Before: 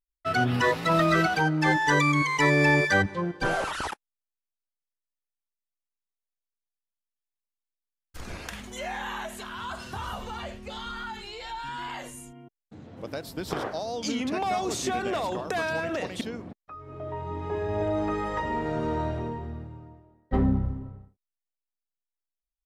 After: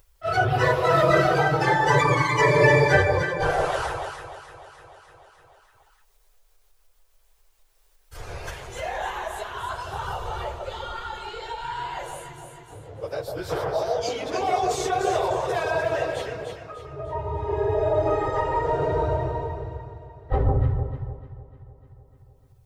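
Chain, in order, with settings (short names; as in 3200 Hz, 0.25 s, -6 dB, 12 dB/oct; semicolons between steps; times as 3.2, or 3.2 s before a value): phase scrambler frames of 50 ms; EQ curve 140 Hz 0 dB, 220 Hz -24 dB, 430 Hz +3 dB, 2200 Hz -4 dB; on a send: echo with dull and thin repeats by turns 0.15 s, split 1100 Hz, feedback 62%, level -2.5 dB; on the sum: upward compressor, threshold -41 dBFS; gain +3.5 dB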